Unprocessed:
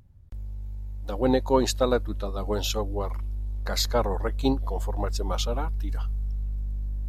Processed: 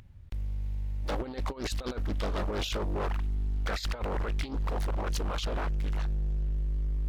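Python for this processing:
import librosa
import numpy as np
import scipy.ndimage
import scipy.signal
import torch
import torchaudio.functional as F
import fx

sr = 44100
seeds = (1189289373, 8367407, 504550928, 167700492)

y = fx.peak_eq(x, sr, hz=2400.0, db=10.0, octaves=1.8)
y = fx.over_compress(y, sr, threshold_db=-27.0, ratio=-0.5)
y = np.clip(10.0 ** (27.0 / 20.0) * y, -1.0, 1.0) / 10.0 ** (27.0 / 20.0)
y = fx.doppler_dist(y, sr, depth_ms=0.78)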